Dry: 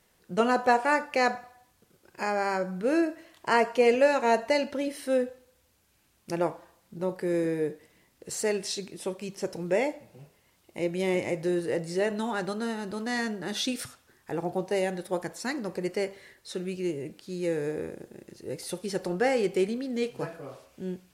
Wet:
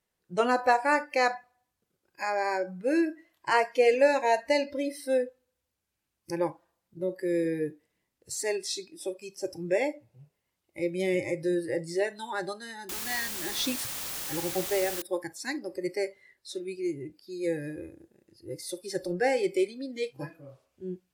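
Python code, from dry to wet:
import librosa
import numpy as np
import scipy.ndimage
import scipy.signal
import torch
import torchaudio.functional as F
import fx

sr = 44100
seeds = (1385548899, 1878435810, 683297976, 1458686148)

y = fx.noise_reduce_blind(x, sr, reduce_db=16)
y = fx.quant_dither(y, sr, seeds[0], bits=6, dither='triangular', at=(12.89, 15.02))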